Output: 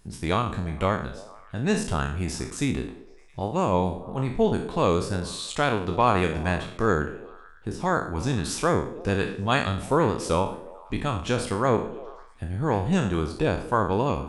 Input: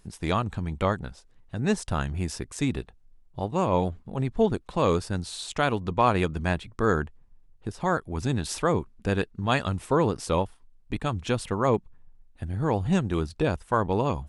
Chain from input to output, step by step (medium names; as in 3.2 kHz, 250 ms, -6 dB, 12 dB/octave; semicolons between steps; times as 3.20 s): spectral sustain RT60 0.51 s; on a send: repeats whose band climbs or falls 111 ms, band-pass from 220 Hz, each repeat 0.7 oct, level -11.5 dB